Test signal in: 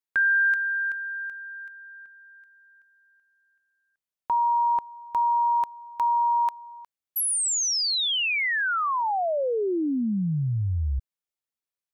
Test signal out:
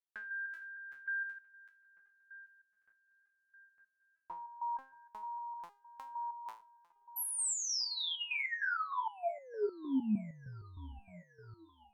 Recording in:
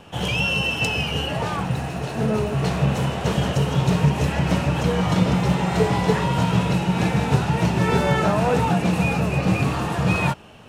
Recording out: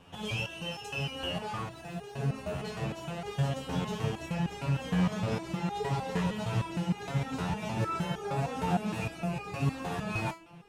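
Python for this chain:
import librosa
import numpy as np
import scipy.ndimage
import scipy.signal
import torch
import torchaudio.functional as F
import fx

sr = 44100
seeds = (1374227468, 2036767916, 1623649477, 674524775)

y = fx.echo_wet_lowpass(x, sr, ms=906, feedback_pct=68, hz=2400.0, wet_db=-23.0)
y = fx.resonator_held(y, sr, hz=6.5, low_hz=89.0, high_hz=410.0)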